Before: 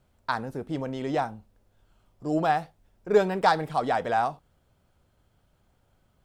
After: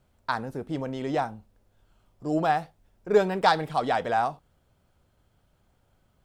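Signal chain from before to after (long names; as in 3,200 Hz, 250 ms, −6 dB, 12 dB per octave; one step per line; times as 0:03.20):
0:03.30–0:04.07: dynamic equaliser 3,300 Hz, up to +5 dB, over −42 dBFS, Q 1.3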